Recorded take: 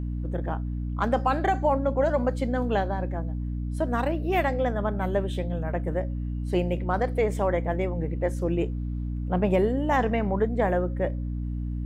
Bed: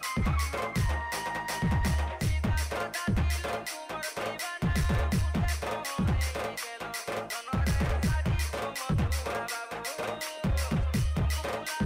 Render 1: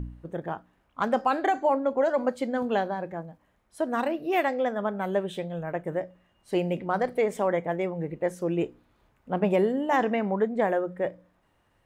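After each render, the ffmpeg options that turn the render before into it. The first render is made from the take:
-af "bandreject=f=60:t=h:w=4,bandreject=f=120:t=h:w=4,bandreject=f=180:t=h:w=4,bandreject=f=240:t=h:w=4,bandreject=f=300:t=h:w=4"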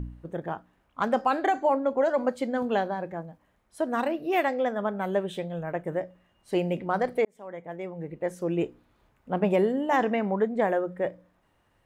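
-filter_complex "[0:a]asplit=2[s0][s1];[s0]atrim=end=7.25,asetpts=PTS-STARTPTS,afade=t=out:st=7.246:d=0.004:c=hsin[s2];[s1]atrim=start=7.25,asetpts=PTS-STARTPTS,afade=t=in:d=1.33[s3];[s2][s3]concat=n=2:v=0:a=1"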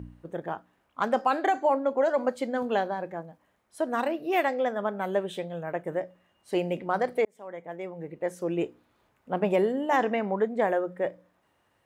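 -af "highpass=69,bass=f=250:g=-5,treble=f=4000:g=1"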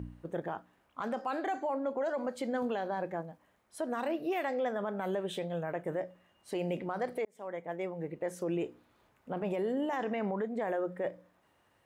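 -af "acompressor=threshold=0.0501:ratio=6,alimiter=level_in=1.19:limit=0.0631:level=0:latency=1:release=18,volume=0.841"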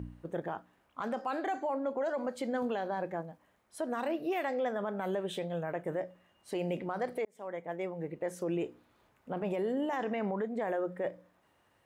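-af anull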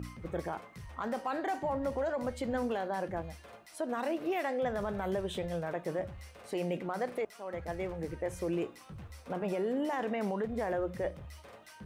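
-filter_complex "[1:a]volume=0.106[s0];[0:a][s0]amix=inputs=2:normalize=0"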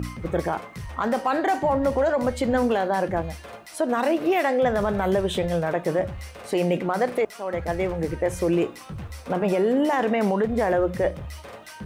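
-af "volume=3.76"

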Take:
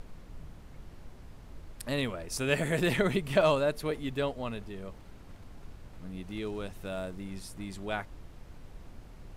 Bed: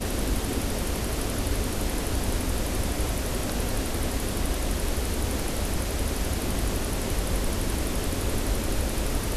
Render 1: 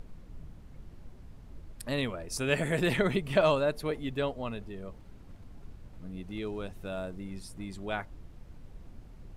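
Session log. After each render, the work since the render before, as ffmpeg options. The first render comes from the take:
-af "afftdn=nr=6:nf=-50"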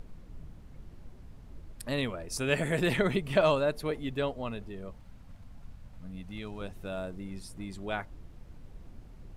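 -filter_complex "[0:a]asettb=1/sr,asplit=3[s0][s1][s2];[s0]atrim=end=4.914[s3];[s1]atrim=start=4.91:end=6.61,asetpts=PTS-STARTPTS,afade=t=in:d=0.004:c=qsin,afade=t=out:st=1.696:d=0.004:c=qsin,equalizer=f=370:t=o:w=0.52:g=-13.5[s4];[s2]atrim=start=6.606[s5];[s3][s4]acrossfade=d=0.004:c1=hsin:c2=qsin[s6];[s6][s5]acrossfade=d=0.004:c1=qsin:c2=hsin"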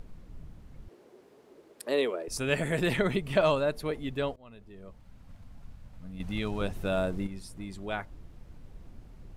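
-filter_complex "[0:a]asettb=1/sr,asplit=3[s0][s1][s2];[s0]atrim=end=0.884[s3];[s1]atrim=start=0.88:end=2.28,asetpts=PTS-STARTPTS,afade=t=in:d=0.004:c=qsin,afade=t=out:st=1.396:d=0.004:c=qsin,highpass=f=400:t=q:w=3.7[s4];[s2]atrim=start=2.276[s5];[s3][s4]acrossfade=d=0.004:c1=hsin:c2=qsin[s6];[s6][s5]acrossfade=d=0.004:c1=qsin:c2=hsin,asplit=4[s7][s8][s9][s10];[s7]atrim=end=4.36,asetpts=PTS-STARTPTS,afade=t=out:st=4.356:d=0.004:c=hsin:silence=0.0668344[s11];[s8]atrim=start=4.36:end=6.202,asetpts=PTS-STARTPTS,afade=t=in:d=0.98:silence=0.0668344[s12];[s9]atrim=start=6.198:end=7.272,asetpts=PTS-STARTPTS,volume=2.51[s13];[s10]atrim=start=7.268[s14];[s11][s12]concat=n=2:v=0:a=1[s15];[s15][s13]acrossfade=d=0.004:c1=hsin:c2=hsin[s16];[s16][s14]acrossfade=d=0.004:c1=hsin:c2=hsin"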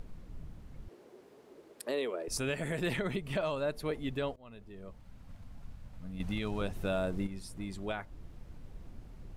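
-af "alimiter=limit=0.0631:level=0:latency=1:release=315"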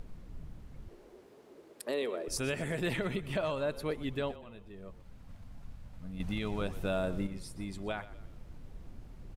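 -filter_complex "[0:a]asplit=5[s0][s1][s2][s3][s4];[s1]adelay=123,afreqshift=-32,volume=0.158[s5];[s2]adelay=246,afreqshift=-64,volume=0.0653[s6];[s3]adelay=369,afreqshift=-96,volume=0.0266[s7];[s4]adelay=492,afreqshift=-128,volume=0.011[s8];[s0][s5][s6][s7][s8]amix=inputs=5:normalize=0"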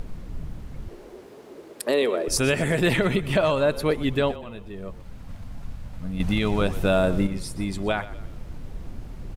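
-af "volume=3.98"

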